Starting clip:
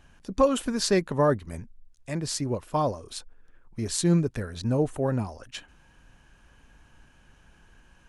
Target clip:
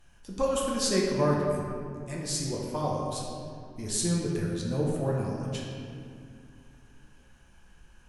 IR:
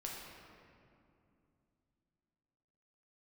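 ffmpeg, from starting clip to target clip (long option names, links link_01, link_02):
-filter_complex "[0:a]aemphasis=mode=production:type=cd[link_01];[1:a]atrim=start_sample=2205,asetrate=48510,aresample=44100[link_02];[link_01][link_02]afir=irnorm=-1:irlink=0,volume=-1.5dB"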